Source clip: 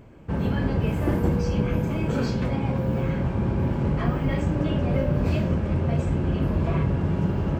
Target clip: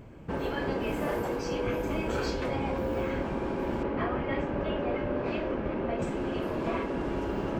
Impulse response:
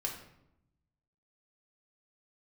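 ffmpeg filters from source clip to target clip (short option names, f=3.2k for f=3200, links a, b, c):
-filter_complex "[0:a]asettb=1/sr,asplit=3[a][b][c];[a]atrim=end=3.834[d];[b]atrim=start=3.83:end=6.02,asetpts=PTS-STARTPTS,afade=t=in:d=0.004:c=qsin,afade=t=out:st=2.186:d=0.004:c=qsin,lowpass=2.9k[e];[c]atrim=start=6.016[f];[d][e]acrossfade=d=0.004:c1=hsin:c2=qsin[g];[g][f]acrossfade=d=0.004:c1=qsin:c2=hsin,afftfilt=real='re*lt(hypot(re,im),0.316)':imag='im*lt(hypot(re,im),0.316)':win_size=1024:overlap=0.75"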